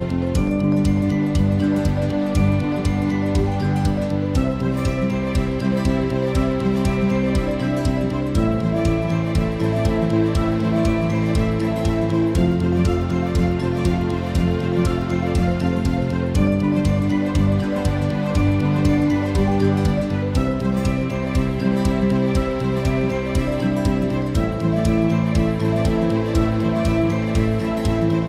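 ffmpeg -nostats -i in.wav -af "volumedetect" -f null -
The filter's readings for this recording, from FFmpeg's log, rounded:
mean_volume: -18.9 dB
max_volume: -5.6 dB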